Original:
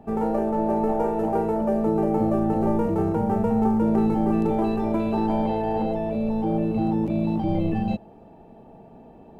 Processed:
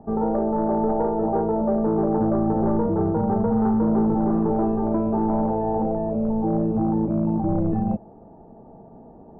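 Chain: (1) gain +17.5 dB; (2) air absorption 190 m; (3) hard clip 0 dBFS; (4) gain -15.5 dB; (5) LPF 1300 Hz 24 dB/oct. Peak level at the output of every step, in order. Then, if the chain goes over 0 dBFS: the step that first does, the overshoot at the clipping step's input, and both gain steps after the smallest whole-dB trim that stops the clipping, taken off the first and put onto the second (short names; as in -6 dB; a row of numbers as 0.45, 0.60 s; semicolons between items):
+7.5, +7.0, 0.0, -15.5, -14.0 dBFS; step 1, 7.0 dB; step 1 +10.5 dB, step 4 -8.5 dB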